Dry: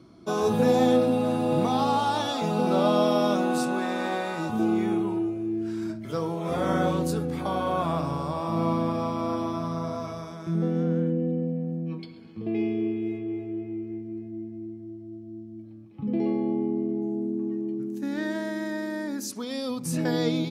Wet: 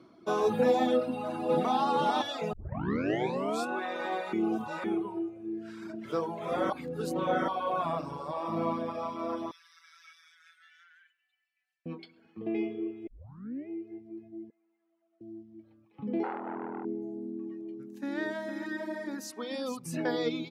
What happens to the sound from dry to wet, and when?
1.05–1.78 s: echo throw 440 ms, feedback 15%, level -2 dB
2.53 s: tape start 1.14 s
4.33–4.84 s: reverse
5.59–6.11 s: echo throw 340 ms, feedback 65%, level -3.5 dB
6.70–7.48 s: reverse
9.51–11.86 s: elliptic high-pass 1.6 kHz, stop band 70 dB
13.07 s: tape start 0.61 s
14.50–15.21 s: Butterworth band-pass 1.6 kHz, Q 0.8
16.23–16.85 s: transformer saturation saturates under 760 Hz
17.62–19.79 s: delay 455 ms -6.5 dB
whole clip: tone controls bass -6 dB, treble -9 dB; reverb removal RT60 1.6 s; high-pass 180 Hz 6 dB/octave

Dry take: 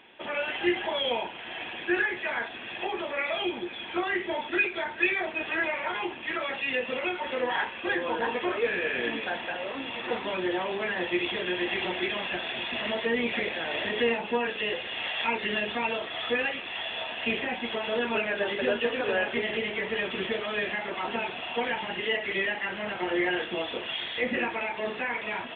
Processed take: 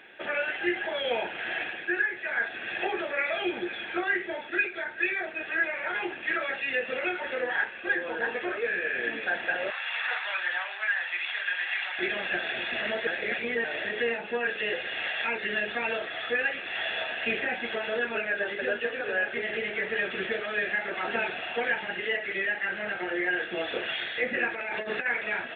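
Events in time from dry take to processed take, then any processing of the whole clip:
9.70–11.99 s: high-pass 880 Hz 24 dB/octave
13.07–13.64 s: reverse
24.55–25.06 s: compressor with a negative ratio -34 dBFS, ratio -0.5
whole clip: graphic EQ with 31 bands 250 Hz -5 dB, 1 kHz -12 dB, 1.6 kHz +8 dB, 3.15 kHz -7 dB; gain riding 0.5 s; bass shelf 200 Hz -7.5 dB

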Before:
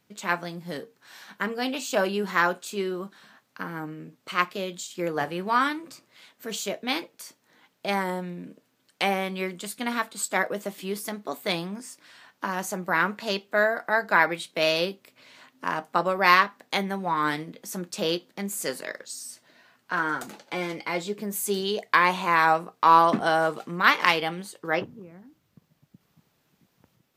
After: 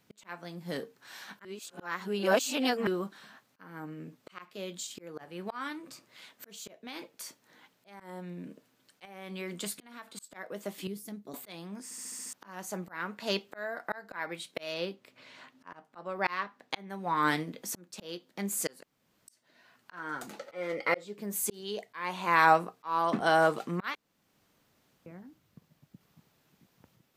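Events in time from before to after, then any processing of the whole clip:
1.45–2.87 s: reverse
6.85–8.00 s: compression, threshold -29 dBFS
9.05–10.16 s: compression 4:1, threshold -31 dBFS
10.87–11.34 s: FFT filter 120 Hz 0 dB, 1.1 kHz -21 dB, 13 kHz -10 dB
11.84 s: stutter in place 0.07 s, 7 plays
14.74–16.90 s: treble shelf 7.3 kHz -11.5 dB
18.83–19.28 s: room tone
20.39–21.05 s: small resonant body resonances 530/1300/1900 Hz, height 16 dB, ringing for 25 ms
23.95–25.06 s: room tone
whole clip: slow attack 612 ms

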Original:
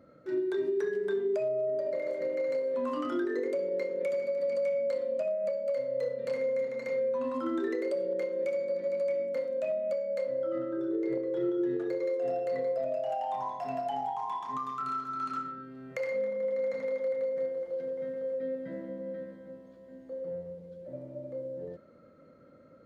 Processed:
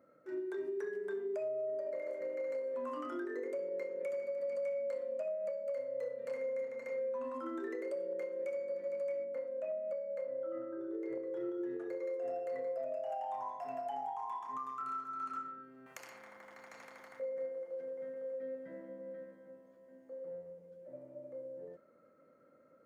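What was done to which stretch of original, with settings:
9.24–10.91 s: treble shelf 3.1 kHz -11.5 dB
15.86–17.20 s: spectrum-flattening compressor 4:1
whole clip: high-pass 500 Hz 6 dB/octave; peaking EQ 3.9 kHz -11.5 dB 0.9 oct; trim -4.5 dB

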